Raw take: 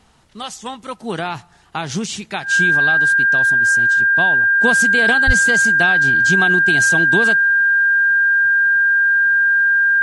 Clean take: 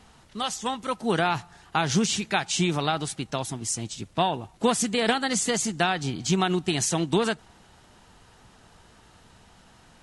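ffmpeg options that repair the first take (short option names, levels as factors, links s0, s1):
-filter_complex "[0:a]bandreject=f=1600:w=30,asplit=3[s0][s1][s2];[s0]afade=t=out:st=5.26:d=0.02[s3];[s1]highpass=f=140:w=0.5412,highpass=f=140:w=1.3066,afade=t=in:st=5.26:d=0.02,afade=t=out:st=5.38:d=0.02[s4];[s2]afade=t=in:st=5.38:d=0.02[s5];[s3][s4][s5]amix=inputs=3:normalize=0,asetnsamples=n=441:p=0,asendcmd='4.6 volume volume -3dB',volume=1"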